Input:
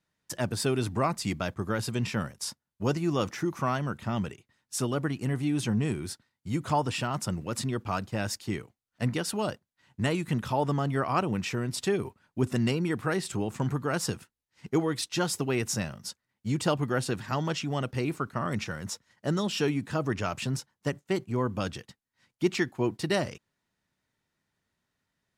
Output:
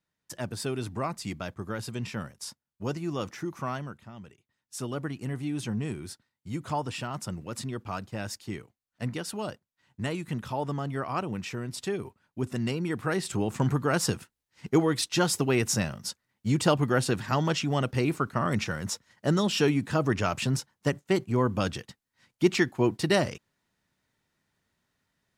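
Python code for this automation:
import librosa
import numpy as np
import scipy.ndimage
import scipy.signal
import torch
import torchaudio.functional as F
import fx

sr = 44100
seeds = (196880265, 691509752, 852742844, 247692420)

y = fx.gain(x, sr, db=fx.line((3.79, -4.5), (4.13, -16.0), (4.92, -4.0), (12.54, -4.0), (13.58, 3.5)))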